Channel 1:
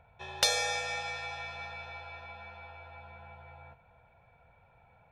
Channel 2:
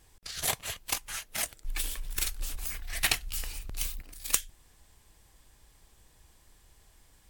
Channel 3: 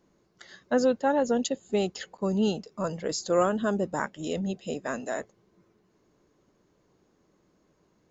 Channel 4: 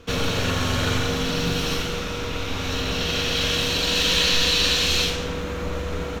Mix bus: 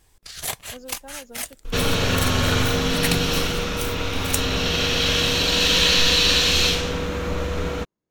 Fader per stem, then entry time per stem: muted, +1.5 dB, −18.0 dB, +2.5 dB; muted, 0.00 s, 0.00 s, 1.65 s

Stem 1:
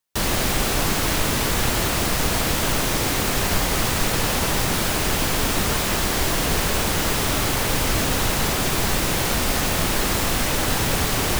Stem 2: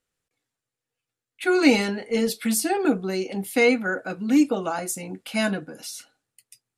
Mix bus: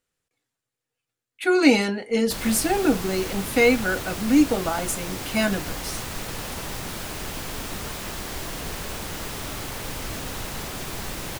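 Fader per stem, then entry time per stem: −11.0, +1.0 decibels; 2.15, 0.00 seconds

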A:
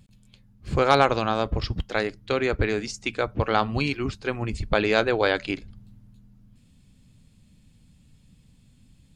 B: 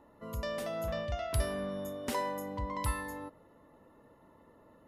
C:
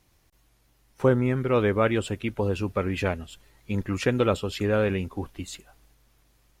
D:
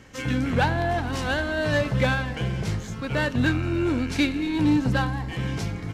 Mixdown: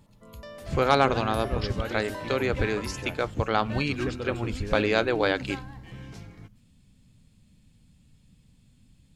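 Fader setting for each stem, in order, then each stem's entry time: −2.5, −6.5, −12.0, −14.5 decibels; 0.00, 0.00, 0.00, 0.55 seconds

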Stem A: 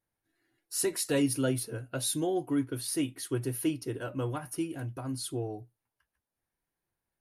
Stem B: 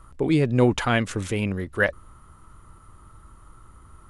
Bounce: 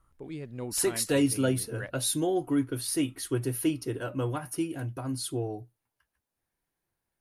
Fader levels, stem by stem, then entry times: +2.5, −19.0 decibels; 0.00, 0.00 seconds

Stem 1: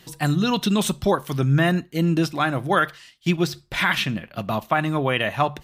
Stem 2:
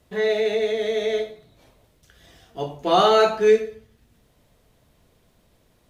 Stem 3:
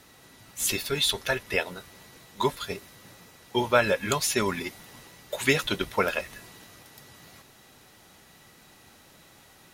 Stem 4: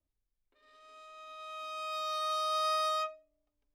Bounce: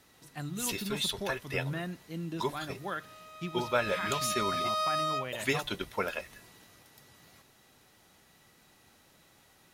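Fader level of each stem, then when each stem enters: −17.5 dB, muted, −7.5 dB, +0.5 dB; 0.15 s, muted, 0.00 s, 2.15 s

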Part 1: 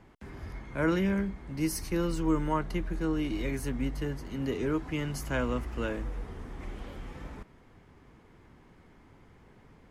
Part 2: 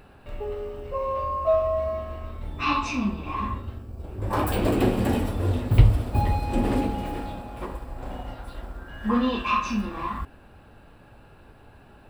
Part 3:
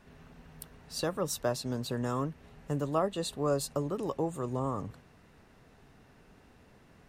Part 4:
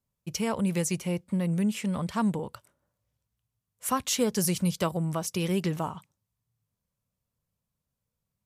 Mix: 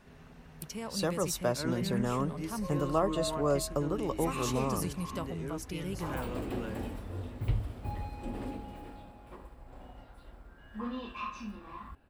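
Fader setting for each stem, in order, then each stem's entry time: −10.0, −15.0, +0.5, −11.0 decibels; 0.80, 1.70, 0.00, 0.35 seconds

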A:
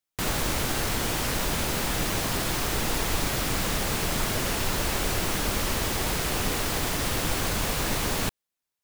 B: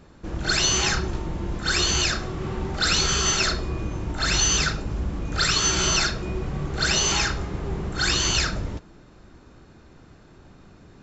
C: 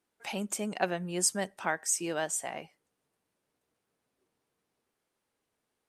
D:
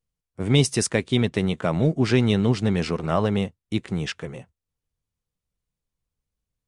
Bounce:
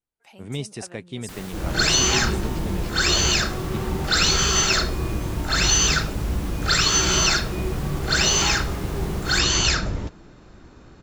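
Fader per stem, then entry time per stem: −12.5, +2.5, −13.5, −12.0 decibels; 1.10, 1.30, 0.00, 0.00 seconds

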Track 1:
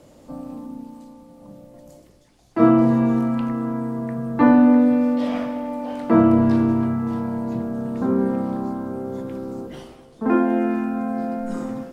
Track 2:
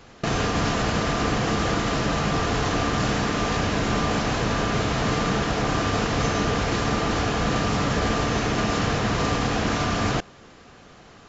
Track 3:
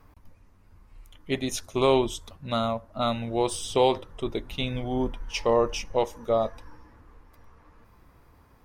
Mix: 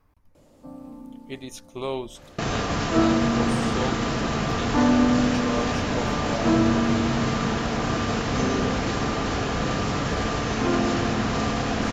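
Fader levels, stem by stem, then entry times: −6.5, −2.5, −8.5 decibels; 0.35, 2.15, 0.00 seconds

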